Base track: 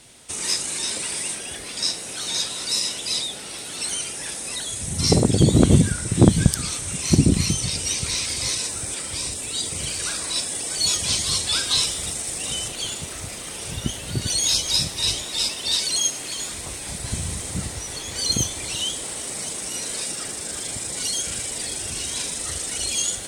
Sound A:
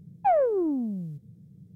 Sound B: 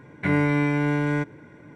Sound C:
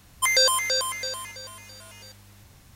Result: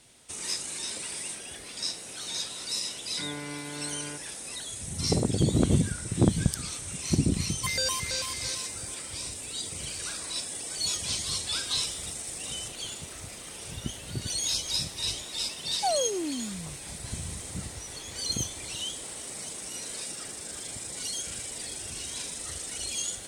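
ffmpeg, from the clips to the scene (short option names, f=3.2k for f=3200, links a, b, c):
-filter_complex "[0:a]volume=-8.5dB[a];[2:a]lowshelf=f=210:g=-8.5,atrim=end=1.75,asetpts=PTS-STARTPTS,volume=-14dB,afade=t=in:d=0.004:c=hsin,afade=t=out:st=1.746:d=0.004:c=hsin,adelay=2940[b];[3:a]atrim=end=2.75,asetpts=PTS-STARTPTS,volume=-10dB,afade=t=in:d=0.004:c=hsin,afade=t=out:st=2.746:d=0.004:c=hsin,adelay=7410[c];[1:a]atrim=end=1.75,asetpts=PTS-STARTPTS,volume=-6dB,afade=t=in:d=0.004:c=hsin,afade=t=out:st=1.746:d=0.004:c=hsin,adelay=15580[d];[a][b][c][d]amix=inputs=4:normalize=0"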